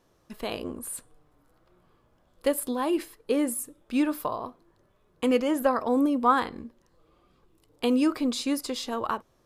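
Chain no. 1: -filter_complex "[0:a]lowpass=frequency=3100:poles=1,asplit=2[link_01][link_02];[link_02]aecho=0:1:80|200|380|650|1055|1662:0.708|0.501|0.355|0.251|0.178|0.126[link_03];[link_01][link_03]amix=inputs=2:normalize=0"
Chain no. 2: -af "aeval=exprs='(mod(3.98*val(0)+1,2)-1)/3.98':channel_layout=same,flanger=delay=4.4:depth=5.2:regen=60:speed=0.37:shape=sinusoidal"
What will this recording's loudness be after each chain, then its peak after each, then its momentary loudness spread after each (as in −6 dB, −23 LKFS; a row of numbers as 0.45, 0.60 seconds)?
−25.5, −31.5 LKFS; −9.0, −13.5 dBFS; 16, 13 LU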